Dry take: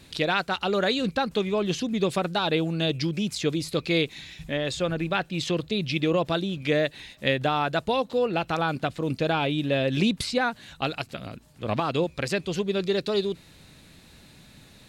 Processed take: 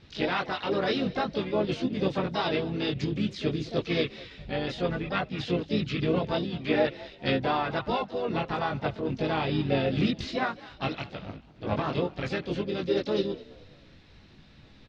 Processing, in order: chorus voices 4, 0.55 Hz, delay 21 ms, depth 2.1 ms; LPF 4400 Hz 24 dB/oct; low shelf 470 Hz +3 dB; harmoniser -12 st -14 dB, -4 st -8 dB, +5 st -9 dB; frequency-shifting echo 0.21 s, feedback 36%, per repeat +48 Hz, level -20 dB; gain -2.5 dB

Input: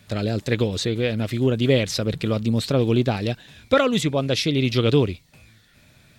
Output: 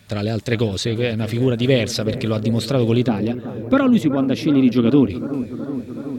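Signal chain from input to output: 3.08–5.1 graphic EQ 125/250/500/2000/4000/8000 Hz -8/+11/-6/-4/-8/-11 dB; analogue delay 0.373 s, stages 4096, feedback 79%, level -13 dB; gain +2 dB

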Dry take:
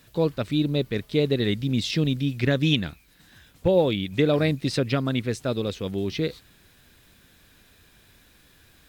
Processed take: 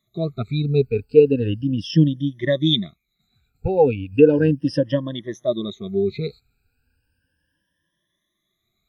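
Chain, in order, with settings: moving spectral ripple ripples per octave 1.2, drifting +0.35 Hz, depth 22 dB; 4.6–5.49 buzz 120 Hz, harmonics 18, -52 dBFS -3 dB/oct; spectral expander 1.5:1; gain +1.5 dB

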